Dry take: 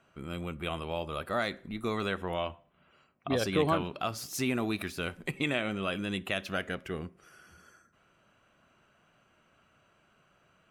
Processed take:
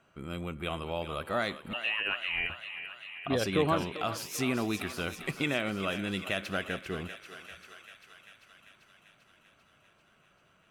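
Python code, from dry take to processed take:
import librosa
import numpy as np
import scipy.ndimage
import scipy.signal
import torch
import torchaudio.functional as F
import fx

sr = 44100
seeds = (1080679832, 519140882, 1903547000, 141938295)

y = fx.freq_invert(x, sr, carrier_hz=3000, at=(1.73, 2.5))
y = fx.echo_thinned(y, sr, ms=393, feedback_pct=72, hz=660.0, wet_db=-10.0)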